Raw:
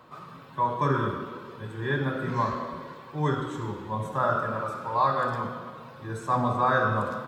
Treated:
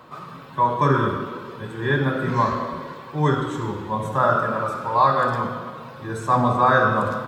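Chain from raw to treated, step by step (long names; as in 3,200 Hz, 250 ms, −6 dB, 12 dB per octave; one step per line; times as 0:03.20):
hum removal 54.15 Hz, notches 2
level +6.5 dB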